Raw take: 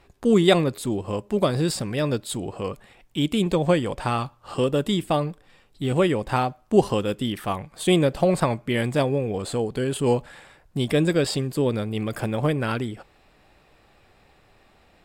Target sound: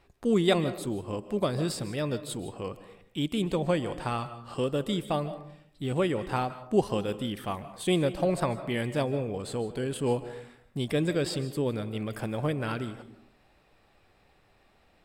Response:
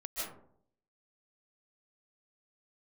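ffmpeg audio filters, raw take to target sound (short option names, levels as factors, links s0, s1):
-filter_complex "[0:a]bandreject=f=7100:w=22,asplit=2[s0][s1];[1:a]atrim=start_sample=2205[s2];[s1][s2]afir=irnorm=-1:irlink=0,volume=0.224[s3];[s0][s3]amix=inputs=2:normalize=0,volume=0.422"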